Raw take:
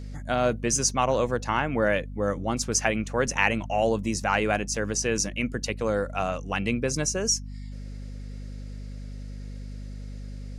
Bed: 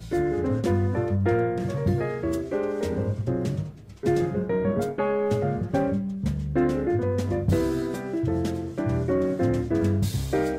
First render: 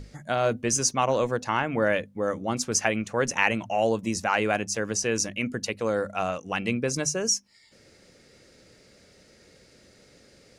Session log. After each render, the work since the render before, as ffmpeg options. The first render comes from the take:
-af "bandreject=f=50:t=h:w=6,bandreject=f=100:t=h:w=6,bandreject=f=150:t=h:w=6,bandreject=f=200:t=h:w=6,bandreject=f=250:t=h:w=6"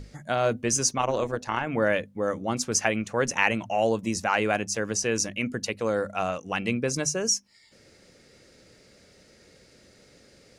-filter_complex "[0:a]asettb=1/sr,asplit=3[a][b][c];[a]atrim=end=0.984[d];[b]atrim=start=0.98:end=1.67,asetpts=PTS-STARTPTS,afade=t=in:d=0.004:c=qsin,afade=t=out:st=0.686:d=0.004:c=qsin,tremolo=f=150:d=0.571[e];[c]atrim=start=1.666[f];[d][e]acrossfade=d=0.004:c1=hsin:c2=qsin[g];[g][f]acrossfade=d=0.004:c1=qsin:c2=hsin"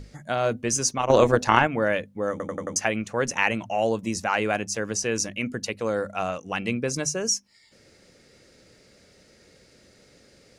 -filter_complex "[0:a]asplit=8[a][b][c][d][e][f][g][h];[a]atrim=end=1.102[i];[b]atrim=start=1.098:end=1.672,asetpts=PTS-STARTPTS,volume=10dB[j];[c]atrim=start=1.668:end=2.402[k];[d]atrim=start=2.308:end=2.402[l];[e]atrim=start=2.308:end=2.402[m];[f]atrim=start=2.308:end=2.402[n];[g]atrim=start=2.308:end=2.402[o];[h]atrim=start=2.758[p];[i][j]acrossfade=d=0.004:c1=hsin:c2=hsin[q];[q][k]acrossfade=d=0.004:c1=hsin:c2=hsin[r];[r][l]acrossfade=d=0.004:c1=hsin:c2=hsin[s];[s][m]acrossfade=d=0.004:c1=hsin:c2=hsin[t];[t][n]acrossfade=d=0.004:c1=hsin:c2=hsin[u];[u][o]acrossfade=d=0.004:c1=hsin:c2=hsin[v];[v][p]acrossfade=d=0.004:c1=hsin:c2=hsin"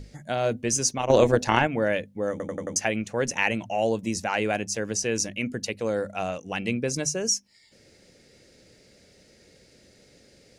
-af "equalizer=f=1.2k:t=o:w=0.68:g=-7.5"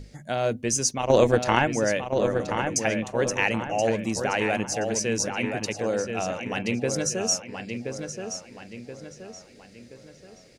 -filter_complex "[0:a]asplit=2[a][b];[b]adelay=1026,lowpass=f=4.1k:p=1,volume=-6dB,asplit=2[c][d];[d]adelay=1026,lowpass=f=4.1k:p=1,volume=0.44,asplit=2[e][f];[f]adelay=1026,lowpass=f=4.1k:p=1,volume=0.44,asplit=2[g][h];[h]adelay=1026,lowpass=f=4.1k:p=1,volume=0.44,asplit=2[i][j];[j]adelay=1026,lowpass=f=4.1k:p=1,volume=0.44[k];[a][c][e][g][i][k]amix=inputs=6:normalize=0"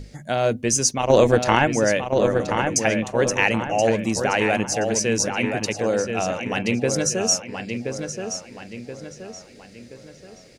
-af "volume=4.5dB,alimiter=limit=-3dB:level=0:latency=1"

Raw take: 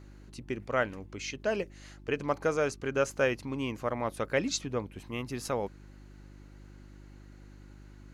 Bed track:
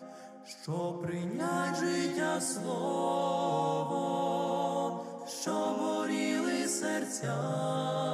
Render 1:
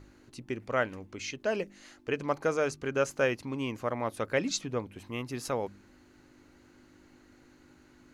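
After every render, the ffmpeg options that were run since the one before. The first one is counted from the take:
-af "bandreject=f=50:t=h:w=4,bandreject=f=100:t=h:w=4,bandreject=f=150:t=h:w=4,bandreject=f=200:t=h:w=4"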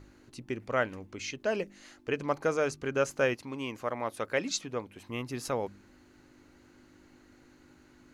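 -filter_complex "[0:a]asettb=1/sr,asplit=3[a][b][c];[a]atrim=end=3.344[d];[b]atrim=start=3.34:end=5.09,asetpts=PTS-STARTPTS,afade=t=in:d=0.004:c=qsin,afade=t=out:st=1.746:d=0.004:c=qsin,lowshelf=f=250:g=-8[e];[c]atrim=start=5.086[f];[d][e]acrossfade=d=0.004:c1=hsin:c2=qsin[g];[g][f]acrossfade=d=0.004:c1=qsin:c2=hsin"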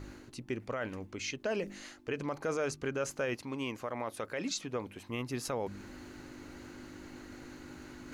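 -af "alimiter=level_in=1dB:limit=-24dB:level=0:latency=1:release=34,volume=-1dB,areverse,acompressor=mode=upward:threshold=-37dB:ratio=2.5,areverse"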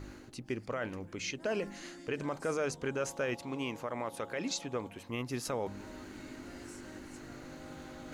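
-filter_complex "[1:a]volume=-20.5dB[a];[0:a][a]amix=inputs=2:normalize=0"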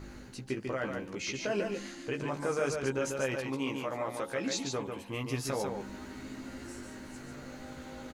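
-filter_complex "[0:a]asplit=2[a][b];[b]adelay=15,volume=-4.5dB[c];[a][c]amix=inputs=2:normalize=0,aecho=1:1:144:0.562"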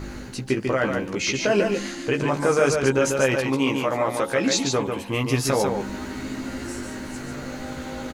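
-af "volume=12dB"

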